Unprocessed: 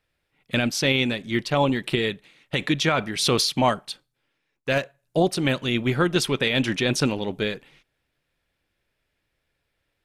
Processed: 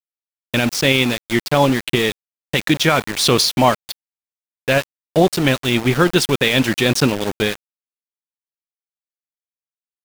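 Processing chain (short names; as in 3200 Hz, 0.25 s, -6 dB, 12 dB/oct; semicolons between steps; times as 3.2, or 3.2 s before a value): AGC gain up to 9 dB; sample gate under -21 dBFS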